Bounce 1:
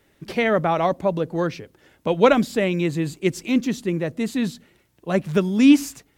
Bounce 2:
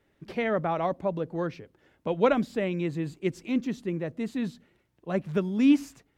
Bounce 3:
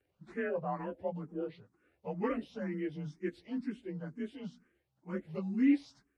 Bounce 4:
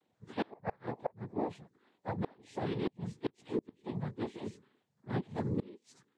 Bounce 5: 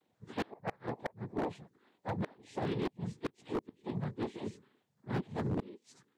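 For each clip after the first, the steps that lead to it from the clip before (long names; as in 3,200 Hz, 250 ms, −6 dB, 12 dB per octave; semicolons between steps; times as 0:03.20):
high-shelf EQ 4,200 Hz −11 dB; level −7 dB
partials spread apart or drawn together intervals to 91%; frequency shifter mixed with the dry sound +2.1 Hz; level −4.5 dB
cochlear-implant simulation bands 6; gate with flip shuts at −25 dBFS, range −29 dB; level +3 dB
wave folding −28 dBFS; level +1 dB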